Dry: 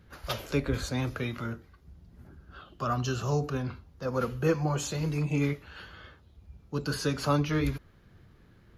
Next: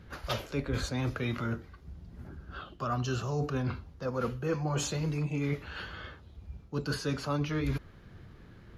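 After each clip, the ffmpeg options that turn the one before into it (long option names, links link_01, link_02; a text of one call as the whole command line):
ffmpeg -i in.wav -af "highshelf=frequency=9900:gain=-10,areverse,acompressor=threshold=-34dB:ratio=6,areverse,volume=5.5dB" out.wav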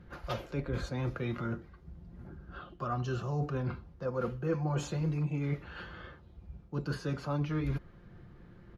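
ffmpeg -i in.wav -af "highshelf=frequency=2500:gain=-11,aecho=1:1:5.7:0.36,volume=-1.5dB" out.wav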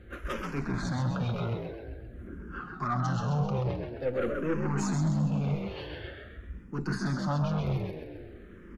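ffmpeg -i in.wav -filter_complex "[0:a]asplit=7[link_01][link_02][link_03][link_04][link_05][link_06][link_07];[link_02]adelay=132,afreqshift=53,volume=-5dB[link_08];[link_03]adelay=264,afreqshift=106,volume=-11.7dB[link_09];[link_04]adelay=396,afreqshift=159,volume=-18.5dB[link_10];[link_05]adelay=528,afreqshift=212,volume=-25.2dB[link_11];[link_06]adelay=660,afreqshift=265,volume=-32dB[link_12];[link_07]adelay=792,afreqshift=318,volume=-38.7dB[link_13];[link_01][link_08][link_09][link_10][link_11][link_12][link_13]amix=inputs=7:normalize=0,aeval=exprs='(tanh(31.6*val(0)+0.35)-tanh(0.35))/31.6':channel_layout=same,asplit=2[link_14][link_15];[link_15]afreqshift=-0.48[link_16];[link_14][link_16]amix=inputs=2:normalize=1,volume=8.5dB" out.wav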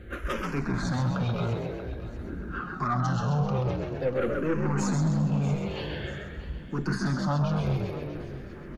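ffmpeg -i in.wav -filter_complex "[0:a]asplit=2[link_01][link_02];[link_02]acompressor=threshold=-36dB:ratio=6,volume=0dB[link_03];[link_01][link_03]amix=inputs=2:normalize=0,aecho=1:1:638|1276|1914:0.168|0.0621|0.023" out.wav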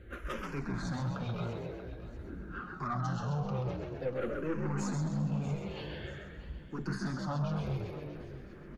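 ffmpeg -i in.wav -af "flanger=delay=2:depth=4.5:regen=-61:speed=1.8:shape=sinusoidal,volume=-3.5dB" out.wav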